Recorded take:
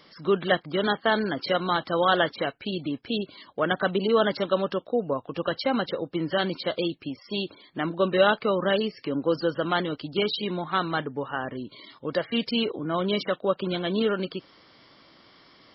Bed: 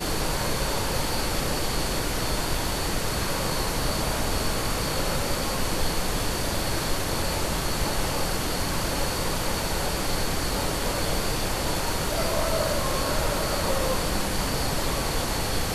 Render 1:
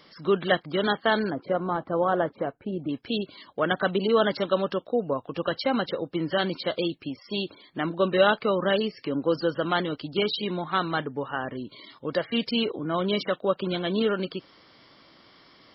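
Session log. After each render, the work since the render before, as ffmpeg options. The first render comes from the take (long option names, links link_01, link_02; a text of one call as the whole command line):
ffmpeg -i in.wav -filter_complex "[0:a]asettb=1/sr,asplit=3[link_01][link_02][link_03];[link_01]atrim=end=1.304[link_04];[link_02]atrim=start=1.3:end=2.89,asetpts=PTS-STARTPTS,afade=type=in:duration=0.004:curve=qsin,afade=type=out:start_time=1.586:duration=0.004:curve=qsin,lowpass=1000[link_05];[link_03]atrim=start=2.886[link_06];[link_04][link_05]acrossfade=duration=0.004:curve1=hsin:curve2=qsin[link_07];[link_07][link_06]acrossfade=duration=0.004:curve1=qsin:curve2=hsin" out.wav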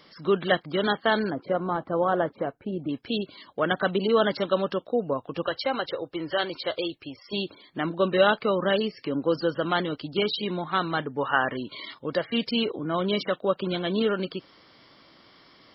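ffmpeg -i in.wav -filter_complex "[0:a]asettb=1/sr,asplit=3[link_01][link_02][link_03];[link_01]atrim=end=5.464[link_04];[link_02]atrim=start=5.46:end=7.33,asetpts=PTS-STARTPTS,afade=type=in:duration=0.004:curve=qsin,afade=type=out:start_time=1.866:duration=0.004:curve=qsin,equalizer=frequency=200:width_type=o:width=0.77:gain=-14.5[link_05];[link_03]atrim=start=7.326[link_06];[link_04][link_05]acrossfade=duration=0.004:curve1=hsin:curve2=qsin[link_07];[link_07][link_06]acrossfade=duration=0.004:curve1=qsin:curve2=hsin,asplit=3[link_08][link_09][link_10];[link_08]afade=type=out:start_time=11.18:duration=0.02[link_11];[link_09]equalizer=frequency=1800:width=0.34:gain=9.5,afade=type=in:start_time=11.18:duration=0.02,afade=type=out:start_time=11.93:duration=0.02[link_12];[link_10]afade=type=in:start_time=11.93:duration=0.02[link_13];[link_11][link_12][link_13]amix=inputs=3:normalize=0" out.wav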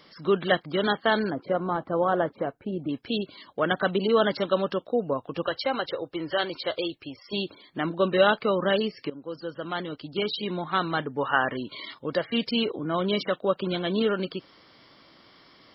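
ffmpeg -i in.wav -filter_complex "[0:a]asplit=2[link_01][link_02];[link_01]atrim=end=9.1,asetpts=PTS-STARTPTS,afade=type=out:start_time=9.096:duration=0.004:curve=hsin:silence=0.149624[link_03];[link_02]atrim=start=9.1,asetpts=PTS-STARTPTS,afade=type=in:duration=1.62:silence=0.149624[link_04];[link_03][link_04]concat=n=2:v=0:a=1" out.wav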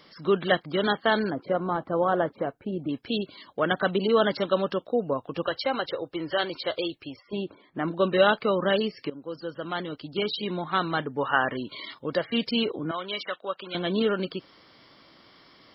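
ffmpeg -i in.wav -filter_complex "[0:a]asettb=1/sr,asplit=3[link_01][link_02][link_03];[link_01]atrim=end=7.214[link_04];[link_02]atrim=start=7.21:end=7.88,asetpts=PTS-STARTPTS,afade=type=in:duration=0.004:curve=qsin,afade=type=out:start_time=0.666:duration=0.004:curve=qsin,lowpass=1800[link_05];[link_03]atrim=start=7.876[link_06];[link_04][link_05]acrossfade=duration=0.004:curve1=hsin:curve2=qsin[link_07];[link_07][link_06]acrossfade=duration=0.004:curve1=qsin:curve2=hsin,asettb=1/sr,asplit=3[link_08][link_09][link_10];[link_08]atrim=end=12.914[link_11];[link_09]atrim=start=12.91:end=13.75,asetpts=PTS-STARTPTS,afade=type=in:duration=0.004:curve=qsin,afade=type=out:start_time=0.836:duration=0.004:curve=qsin,bandpass=frequency=2200:width_type=q:width=0.63[link_12];[link_10]atrim=start=13.746[link_13];[link_11][link_12]acrossfade=duration=0.004:curve1=hsin:curve2=qsin[link_14];[link_14][link_13]acrossfade=duration=0.004:curve1=qsin:curve2=hsin" out.wav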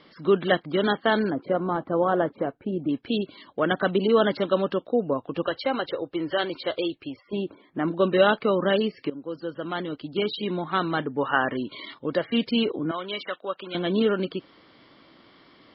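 ffmpeg -i in.wav -af "lowpass=frequency=4200:width=0.5412,lowpass=frequency=4200:width=1.3066,equalizer=frequency=290:width=1.2:gain=4.5" out.wav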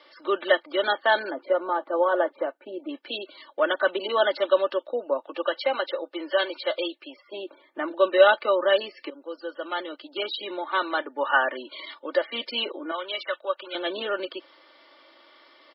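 ffmpeg -i in.wav -af "highpass=frequency=430:width=0.5412,highpass=frequency=430:width=1.3066,aecho=1:1:3.4:0.69" out.wav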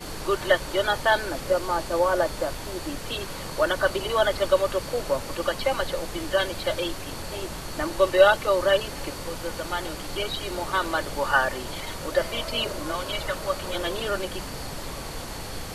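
ffmpeg -i in.wav -i bed.wav -filter_complex "[1:a]volume=-8.5dB[link_01];[0:a][link_01]amix=inputs=2:normalize=0" out.wav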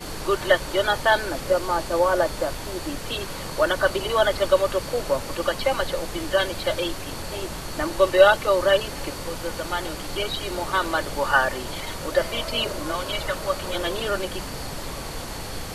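ffmpeg -i in.wav -af "volume=2dB" out.wav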